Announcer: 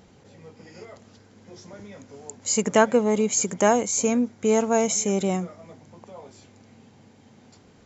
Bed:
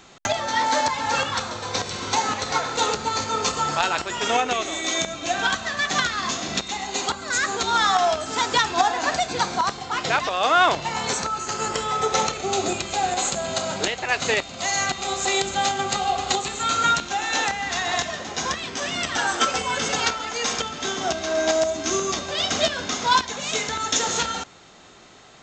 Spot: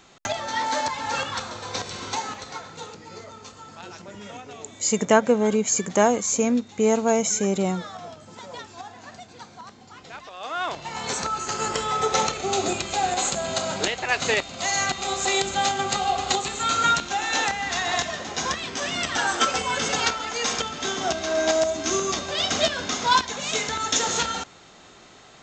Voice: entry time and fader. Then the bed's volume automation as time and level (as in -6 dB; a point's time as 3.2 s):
2.35 s, +0.5 dB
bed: 2.03 s -4 dB
3.03 s -20 dB
10.06 s -20 dB
11.28 s -0.5 dB